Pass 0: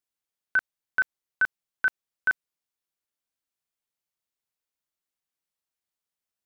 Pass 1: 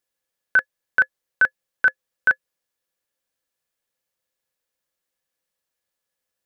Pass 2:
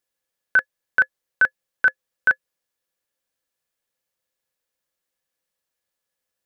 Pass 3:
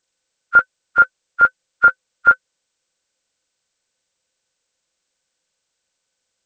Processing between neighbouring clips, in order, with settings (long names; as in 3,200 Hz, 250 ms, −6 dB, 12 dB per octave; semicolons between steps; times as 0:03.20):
hollow resonant body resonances 520/1,700 Hz, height 13 dB, ringing for 70 ms; level +6 dB
no processing that can be heard
hearing-aid frequency compression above 1,200 Hz 1.5 to 1; level +7 dB